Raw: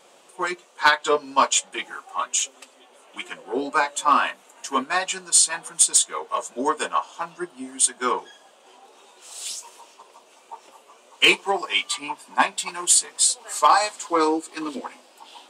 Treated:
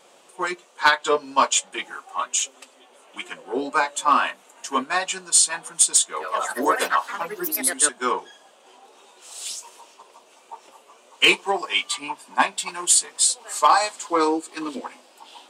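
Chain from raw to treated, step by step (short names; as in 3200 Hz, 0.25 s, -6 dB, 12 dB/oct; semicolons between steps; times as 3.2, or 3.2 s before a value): 6.05–8.1 echoes that change speed 0.116 s, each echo +3 st, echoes 3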